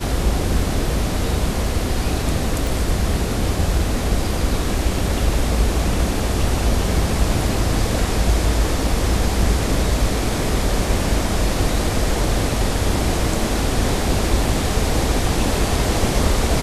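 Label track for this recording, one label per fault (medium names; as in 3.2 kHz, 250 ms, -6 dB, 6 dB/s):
2.670000	2.670000	pop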